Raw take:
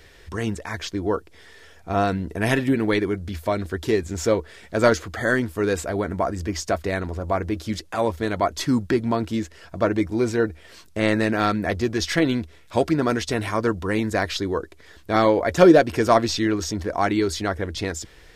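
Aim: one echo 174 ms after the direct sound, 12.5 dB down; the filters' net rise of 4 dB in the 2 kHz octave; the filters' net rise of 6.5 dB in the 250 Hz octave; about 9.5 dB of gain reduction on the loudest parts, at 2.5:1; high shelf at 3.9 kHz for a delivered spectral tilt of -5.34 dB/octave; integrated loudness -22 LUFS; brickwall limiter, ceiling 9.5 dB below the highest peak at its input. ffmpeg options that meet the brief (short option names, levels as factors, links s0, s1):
-af "equalizer=f=250:t=o:g=8.5,equalizer=f=2000:t=o:g=6,highshelf=f=3900:g=-5.5,acompressor=threshold=0.126:ratio=2.5,alimiter=limit=0.178:level=0:latency=1,aecho=1:1:174:0.237,volume=1.58"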